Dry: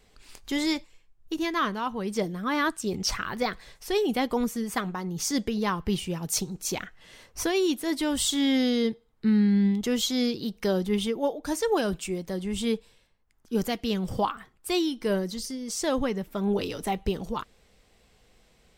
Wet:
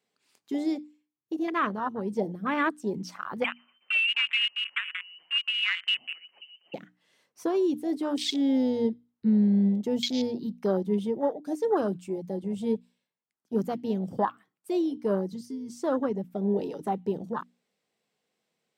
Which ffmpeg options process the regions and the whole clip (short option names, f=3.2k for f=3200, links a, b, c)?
-filter_complex "[0:a]asettb=1/sr,asplit=3[a][b][c];[a]atrim=end=3.444[d];[b]atrim=start=3.44:end=6.74,asetpts=PTS-STARTPTS,afade=t=in:d=0.004:c=qsin,afade=t=out:st=3.296:d=0.004:c=qsin,asplit=2[e][f];[f]adelay=121,lowpass=f=2.2k:p=1,volume=-18.5dB,asplit=2[g][h];[h]adelay=121,lowpass=f=2.2k:p=1,volume=0.52,asplit=2[i][j];[j]adelay=121,lowpass=f=2.2k:p=1,volume=0.52,asplit=2[k][l];[l]adelay=121,lowpass=f=2.2k:p=1,volume=0.52[m];[e][g][i][k][m]amix=inputs=5:normalize=0,atrim=end_sample=145530,lowpass=f=2.6k:t=q:w=0.5098,lowpass=f=2.6k:t=q:w=0.6013,lowpass=f=2.6k:t=q:w=0.9,lowpass=f=2.6k:t=q:w=2.563,afreqshift=-3100[n];[c]atrim=start=6.736[o];[d][n]acrossfade=d=0.004:c1=hsin:c2=qsin[p];[p][o]acrossfade=d=0.004:c1=qsin:c2=hsin,highpass=f=150:w=0.5412,highpass=f=150:w=1.3066,afwtdn=0.0355,bandreject=f=60:t=h:w=6,bandreject=f=120:t=h:w=6,bandreject=f=180:t=h:w=6,bandreject=f=240:t=h:w=6,bandreject=f=300:t=h:w=6"